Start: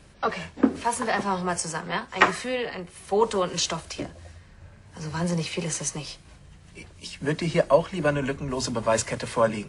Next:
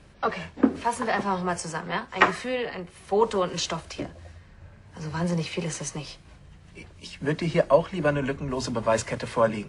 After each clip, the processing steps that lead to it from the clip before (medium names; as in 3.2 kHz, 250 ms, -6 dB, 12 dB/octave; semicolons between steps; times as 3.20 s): treble shelf 6.1 kHz -9.5 dB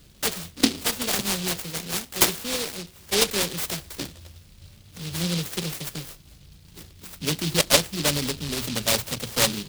delay time shaken by noise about 3.7 kHz, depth 0.36 ms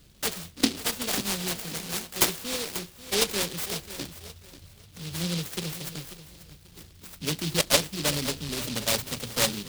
bit-crushed delay 539 ms, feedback 35%, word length 7-bit, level -13 dB; trim -3.5 dB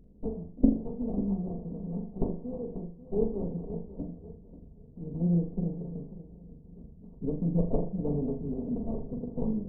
comb filter that takes the minimum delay 4.4 ms; Gaussian low-pass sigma 17 samples; flutter echo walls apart 7 m, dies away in 0.4 s; trim +5.5 dB